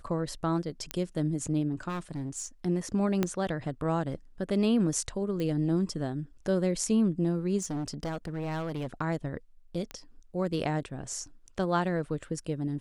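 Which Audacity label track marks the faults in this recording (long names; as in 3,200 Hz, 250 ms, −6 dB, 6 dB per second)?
0.910000	0.910000	click −15 dBFS
1.880000	2.460000	clipping −30.5 dBFS
3.230000	3.230000	click −13 dBFS
5.400000	5.400000	click −22 dBFS
7.580000	8.880000	clipping −29.5 dBFS
9.910000	9.910000	click −23 dBFS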